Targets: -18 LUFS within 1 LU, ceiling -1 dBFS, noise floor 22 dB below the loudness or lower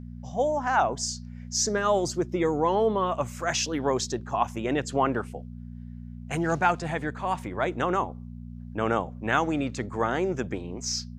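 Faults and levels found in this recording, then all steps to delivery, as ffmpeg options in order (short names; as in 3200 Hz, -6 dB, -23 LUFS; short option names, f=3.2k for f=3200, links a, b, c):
hum 60 Hz; harmonics up to 240 Hz; hum level -37 dBFS; loudness -27.5 LUFS; peak -8.0 dBFS; loudness target -18.0 LUFS
-> -af "bandreject=f=60:t=h:w=4,bandreject=f=120:t=h:w=4,bandreject=f=180:t=h:w=4,bandreject=f=240:t=h:w=4"
-af "volume=9.5dB,alimiter=limit=-1dB:level=0:latency=1"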